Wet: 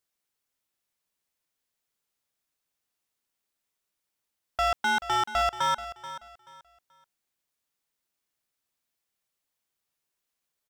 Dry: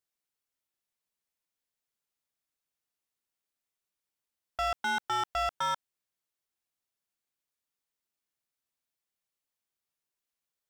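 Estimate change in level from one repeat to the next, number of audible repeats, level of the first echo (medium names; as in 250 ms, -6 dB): -11.5 dB, 2, -13.5 dB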